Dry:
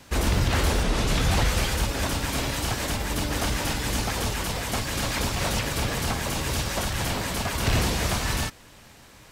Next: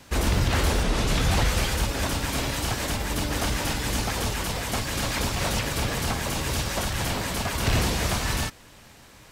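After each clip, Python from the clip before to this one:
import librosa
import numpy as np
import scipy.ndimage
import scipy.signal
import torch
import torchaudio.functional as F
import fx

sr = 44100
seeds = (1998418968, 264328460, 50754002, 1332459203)

y = x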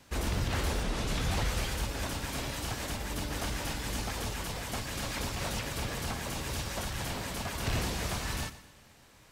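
y = fx.echo_feedback(x, sr, ms=121, feedback_pct=42, wet_db=-15.5)
y = y * 10.0 ** (-8.5 / 20.0)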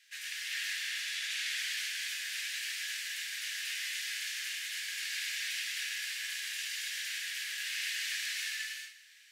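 y = scipy.signal.sosfilt(scipy.signal.cheby1(5, 1.0, 1700.0, 'highpass', fs=sr, output='sos'), x)
y = fx.high_shelf(y, sr, hz=7000.0, db=-8.5)
y = fx.rev_gated(y, sr, seeds[0], gate_ms=450, shape='flat', drr_db=-4.5)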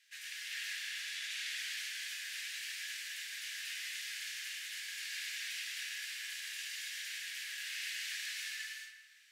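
y = fx.echo_filtered(x, sr, ms=164, feedback_pct=71, hz=1000.0, wet_db=-3.5)
y = y * 10.0 ** (-5.0 / 20.0)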